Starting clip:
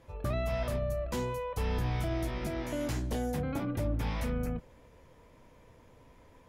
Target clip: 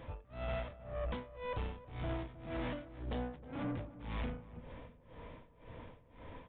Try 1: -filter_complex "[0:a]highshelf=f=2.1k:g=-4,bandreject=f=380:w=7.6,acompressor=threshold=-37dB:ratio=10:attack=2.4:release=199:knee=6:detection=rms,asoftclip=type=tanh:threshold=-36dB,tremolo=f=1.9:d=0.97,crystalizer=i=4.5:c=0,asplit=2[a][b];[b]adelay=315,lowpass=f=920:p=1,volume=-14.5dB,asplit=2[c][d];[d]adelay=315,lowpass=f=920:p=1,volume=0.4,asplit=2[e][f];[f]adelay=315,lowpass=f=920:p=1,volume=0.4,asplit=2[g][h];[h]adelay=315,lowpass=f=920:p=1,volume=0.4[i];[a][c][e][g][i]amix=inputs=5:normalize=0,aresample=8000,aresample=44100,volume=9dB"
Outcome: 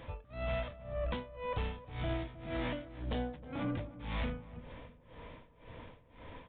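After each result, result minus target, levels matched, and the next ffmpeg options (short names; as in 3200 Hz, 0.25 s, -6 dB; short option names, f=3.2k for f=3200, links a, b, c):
soft clip: distortion -8 dB; 4000 Hz band +2.5 dB
-filter_complex "[0:a]highshelf=f=2.1k:g=-4,bandreject=f=380:w=7.6,acompressor=threshold=-37dB:ratio=10:attack=2.4:release=199:knee=6:detection=rms,asoftclip=type=tanh:threshold=-42.5dB,tremolo=f=1.9:d=0.97,crystalizer=i=4.5:c=0,asplit=2[a][b];[b]adelay=315,lowpass=f=920:p=1,volume=-14.5dB,asplit=2[c][d];[d]adelay=315,lowpass=f=920:p=1,volume=0.4,asplit=2[e][f];[f]adelay=315,lowpass=f=920:p=1,volume=0.4,asplit=2[g][h];[h]adelay=315,lowpass=f=920:p=1,volume=0.4[i];[a][c][e][g][i]amix=inputs=5:normalize=0,aresample=8000,aresample=44100,volume=9dB"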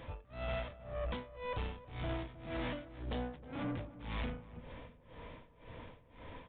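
4000 Hz band +4.0 dB
-filter_complex "[0:a]highshelf=f=2.1k:g=-10.5,bandreject=f=380:w=7.6,acompressor=threshold=-37dB:ratio=10:attack=2.4:release=199:knee=6:detection=rms,asoftclip=type=tanh:threshold=-42.5dB,tremolo=f=1.9:d=0.97,crystalizer=i=4.5:c=0,asplit=2[a][b];[b]adelay=315,lowpass=f=920:p=1,volume=-14.5dB,asplit=2[c][d];[d]adelay=315,lowpass=f=920:p=1,volume=0.4,asplit=2[e][f];[f]adelay=315,lowpass=f=920:p=1,volume=0.4,asplit=2[g][h];[h]adelay=315,lowpass=f=920:p=1,volume=0.4[i];[a][c][e][g][i]amix=inputs=5:normalize=0,aresample=8000,aresample=44100,volume=9dB"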